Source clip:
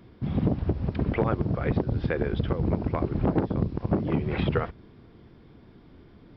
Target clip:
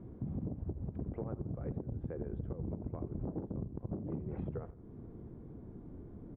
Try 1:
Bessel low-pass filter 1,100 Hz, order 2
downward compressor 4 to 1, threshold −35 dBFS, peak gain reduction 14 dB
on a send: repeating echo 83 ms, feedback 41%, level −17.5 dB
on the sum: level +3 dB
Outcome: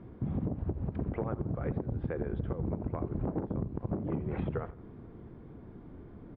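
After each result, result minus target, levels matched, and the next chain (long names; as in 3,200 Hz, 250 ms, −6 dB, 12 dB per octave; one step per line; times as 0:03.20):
downward compressor: peak gain reduction −5 dB; 1,000 Hz band +4.0 dB
Bessel low-pass filter 1,100 Hz, order 2
downward compressor 4 to 1, threshold −42.5 dBFS, peak gain reduction 19.5 dB
on a send: repeating echo 83 ms, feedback 41%, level −17.5 dB
on the sum: level +3 dB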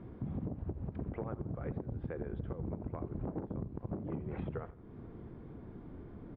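1,000 Hz band +5.0 dB
Bessel low-pass filter 520 Hz, order 2
downward compressor 4 to 1, threshold −42.5 dBFS, peak gain reduction 19 dB
on a send: repeating echo 83 ms, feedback 41%, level −17.5 dB
on the sum: level +3 dB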